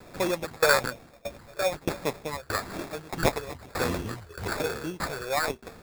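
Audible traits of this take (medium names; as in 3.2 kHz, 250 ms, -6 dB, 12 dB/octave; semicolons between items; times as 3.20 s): phasing stages 6, 1.1 Hz, lowest notch 220–4100 Hz; a quantiser's noise floor 10-bit, dither none; tremolo saw down 1.6 Hz, depth 95%; aliases and images of a low sample rate 3 kHz, jitter 0%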